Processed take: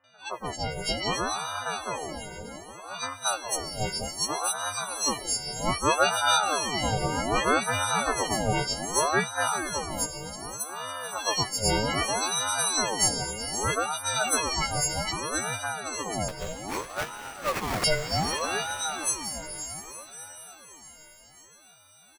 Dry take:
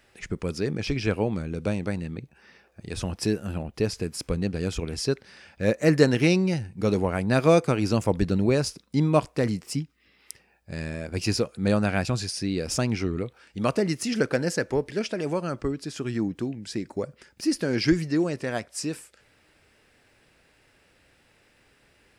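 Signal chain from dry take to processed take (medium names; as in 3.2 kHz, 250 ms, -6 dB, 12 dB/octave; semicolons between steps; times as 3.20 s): partials quantised in pitch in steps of 6 st; three bands offset in time lows, mids, highs 40/310 ms, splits 1/5.5 kHz; 16.28–17.84 s: sample-rate reducer 3.2 kHz, jitter 20%; on a send: echo that smears into a reverb 502 ms, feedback 53%, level -7 dB; on the sum: ring modulator with a swept carrier 720 Hz, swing 60%, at 0.64 Hz; trim -2 dB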